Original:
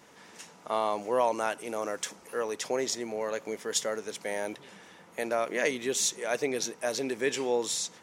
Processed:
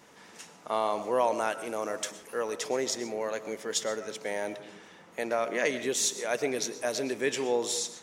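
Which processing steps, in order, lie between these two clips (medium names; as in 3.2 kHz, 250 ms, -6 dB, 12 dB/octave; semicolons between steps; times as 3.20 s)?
3.63–5.83 s: peaking EQ 11 kHz -6 dB 0.66 oct; reverberation RT60 0.70 s, pre-delay 80 ms, DRR 12.5 dB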